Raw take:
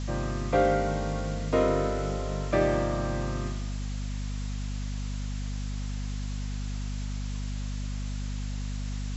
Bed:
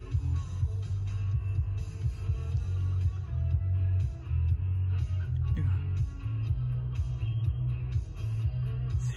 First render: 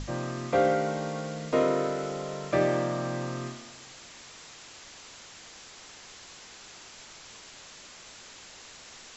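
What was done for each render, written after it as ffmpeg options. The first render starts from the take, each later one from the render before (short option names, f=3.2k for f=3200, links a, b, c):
-af "bandreject=f=50:t=h:w=6,bandreject=f=100:t=h:w=6,bandreject=f=150:t=h:w=6,bandreject=f=200:t=h:w=6,bandreject=f=250:t=h:w=6,bandreject=f=300:t=h:w=6"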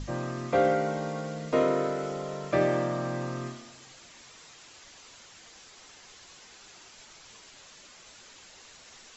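-af "afftdn=nr=6:nf=-49"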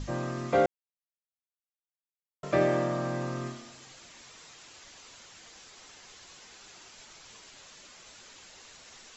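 -filter_complex "[0:a]asplit=3[a][b][c];[a]atrim=end=0.66,asetpts=PTS-STARTPTS,afade=t=out:st=0.656:d=0.004:c=hsin[d];[b]atrim=start=0.66:end=2.43,asetpts=PTS-STARTPTS,volume=0[e];[c]atrim=start=2.43,asetpts=PTS-STARTPTS,afade=t=in:d=0.004:c=hsin[f];[d][e][f]concat=n=3:v=0:a=1"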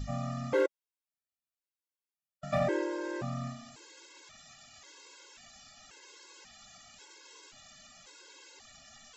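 -af "asoftclip=type=hard:threshold=-18.5dB,afftfilt=real='re*gt(sin(2*PI*0.93*pts/sr)*(1-2*mod(floor(b*sr/1024/280),2)),0)':imag='im*gt(sin(2*PI*0.93*pts/sr)*(1-2*mod(floor(b*sr/1024/280),2)),0)':win_size=1024:overlap=0.75"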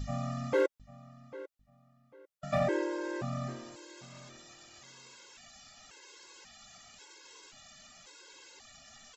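-filter_complex "[0:a]asplit=2[a][b];[b]adelay=797,lowpass=f=4k:p=1,volume=-17dB,asplit=2[c][d];[d]adelay=797,lowpass=f=4k:p=1,volume=0.25[e];[a][c][e]amix=inputs=3:normalize=0"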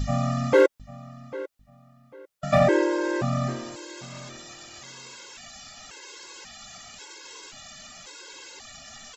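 -af "volume=10.5dB"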